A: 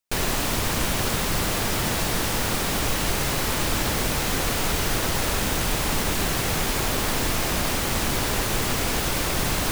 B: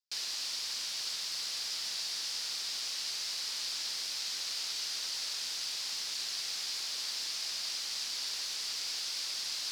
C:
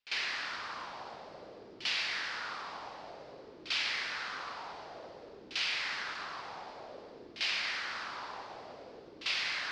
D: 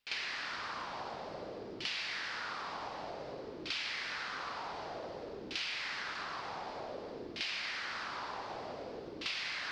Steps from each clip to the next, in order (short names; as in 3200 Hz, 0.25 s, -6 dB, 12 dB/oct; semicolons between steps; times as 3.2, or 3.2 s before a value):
band-pass 4800 Hz, Q 3.6
LFO low-pass saw down 0.54 Hz 340–2800 Hz; reverse echo 47 ms -14.5 dB; gain +8 dB
low shelf 370 Hz +4 dB; compressor 3:1, threshold -44 dBFS, peak gain reduction 11 dB; gain +5 dB